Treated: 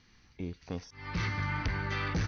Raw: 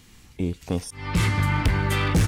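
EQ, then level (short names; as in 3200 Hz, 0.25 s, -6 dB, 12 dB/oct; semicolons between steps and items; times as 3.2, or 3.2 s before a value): rippled Chebyshev low-pass 6200 Hz, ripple 6 dB; -6.0 dB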